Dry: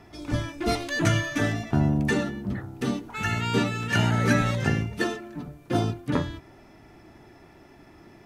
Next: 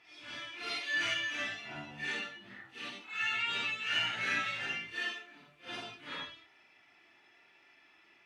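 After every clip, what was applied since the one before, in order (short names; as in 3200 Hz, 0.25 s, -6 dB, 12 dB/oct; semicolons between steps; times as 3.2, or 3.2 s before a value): phase scrambler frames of 0.2 s; band-pass 2700 Hz, Q 2.1; gain +1.5 dB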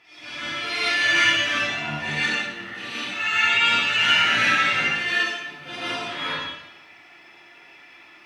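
plate-style reverb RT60 0.88 s, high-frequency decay 0.9×, pre-delay 0.105 s, DRR -8 dB; gain +6.5 dB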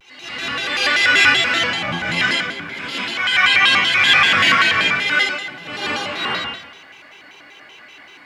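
shaped vibrato square 5.2 Hz, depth 250 cents; gain +5.5 dB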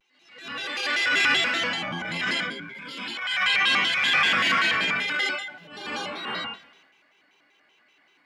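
spectral noise reduction 12 dB; transient shaper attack -11 dB, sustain +5 dB; resonant low shelf 140 Hz -6 dB, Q 1.5; gain -7.5 dB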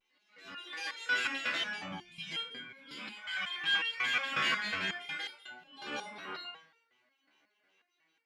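spectral gain 1.98–2.32, 250–2200 Hz -18 dB; stepped resonator 5.5 Hz 73–460 Hz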